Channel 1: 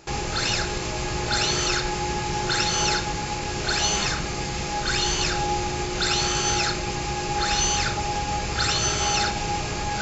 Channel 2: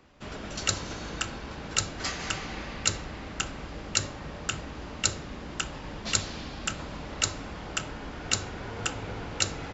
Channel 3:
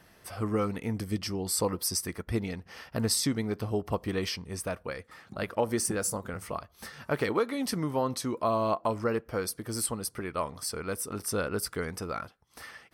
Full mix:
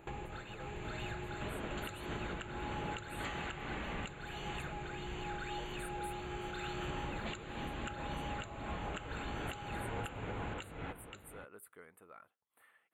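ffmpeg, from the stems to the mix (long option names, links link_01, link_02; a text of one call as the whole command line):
ffmpeg -i stem1.wav -i stem2.wav -i stem3.wav -filter_complex "[0:a]acontrast=65,volume=-12dB,asplit=2[link_01][link_02];[link_02]volume=-12dB[link_03];[1:a]acompressor=threshold=-32dB:ratio=6,adelay=1200,volume=-0.5dB,asplit=3[link_04][link_05][link_06];[link_04]atrim=end=4.15,asetpts=PTS-STARTPTS,afade=type=out:start_time=4.146:duration=0.004:curve=hsin[link_07];[link_05]atrim=start=4.15:end=6.81,asetpts=PTS-STARTPTS,volume=0[link_08];[link_06]atrim=start=6.81,asetpts=PTS-STARTPTS,afade=type=in:duration=0.004:curve=hsin[link_09];[link_07][link_08][link_09]concat=n=3:v=0:a=1,asplit=2[link_10][link_11];[link_11]volume=-14dB[link_12];[2:a]highpass=frequency=680:poles=1,volume=-17dB,asplit=2[link_13][link_14];[link_14]apad=whole_len=441556[link_15];[link_01][link_15]sidechaincompress=threshold=-59dB:ratio=8:attack=8.3:release=403[link_16];[link_16][link_13]amix=inputs=2:normalize=0,equalizer=frequency=4300:width=0.32:gain=-3.5,acompressor=threshold=-42dB:ratio=4,volume=0dB[link_17];[link_03][link_12]amix=inputs=2:normalize=0,aecho=0:1:526:1[link_18];[link_10][link_17][link_18]amix=inputs=3:normalize=0,asuperstop=centerf=5400:order=4:qfactor=1,alimiter=level_in=6dB:limit=-24dB:level=0:latency=1:release=427,volume=-6dB" out.wav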